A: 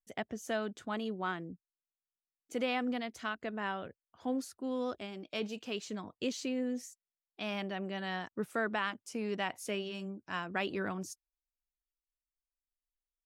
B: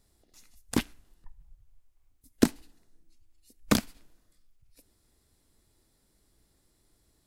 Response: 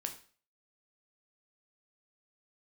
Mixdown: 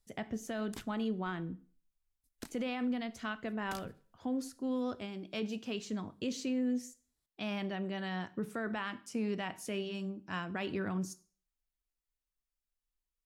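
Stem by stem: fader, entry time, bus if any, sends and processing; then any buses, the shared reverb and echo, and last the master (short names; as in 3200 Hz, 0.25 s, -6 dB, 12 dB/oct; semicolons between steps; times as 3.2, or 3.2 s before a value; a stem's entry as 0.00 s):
-5.0 dB, 0.00 s, send -3.5 dB, tone controls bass +8 dB, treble 0 dB
-10.5 dB, 0.00 s, no send, bell 250 Hz -9.5 dB 2.5 oct; auto duck -7 dB, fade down 1.15 s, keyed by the first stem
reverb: on, RT60 0.40 s, pre-delay 7 ms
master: limiter -27 dBFS, peak gain reduction 6.5 dB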